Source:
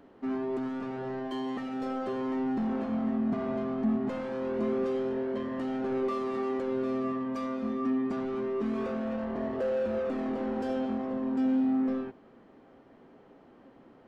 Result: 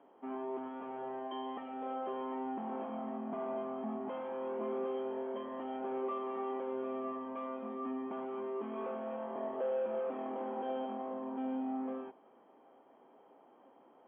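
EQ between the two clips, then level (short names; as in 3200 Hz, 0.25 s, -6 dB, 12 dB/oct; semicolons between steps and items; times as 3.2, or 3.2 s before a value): HPF 300 Hz 12 dB/oct; rippled Chebyshev low-pass 3300 Hz, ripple 9 dB; bell 2300 Hz -8 dB 0.56 oct; +1.0 dB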